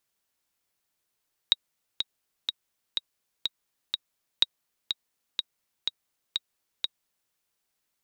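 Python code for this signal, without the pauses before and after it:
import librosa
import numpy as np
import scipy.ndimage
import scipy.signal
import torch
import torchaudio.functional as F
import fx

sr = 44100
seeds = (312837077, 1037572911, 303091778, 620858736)

y = fx.click_track(sr, bpm=124, beats=6, bars=2, hz=3800.0, accent_db=7.5, level_db=-6.0)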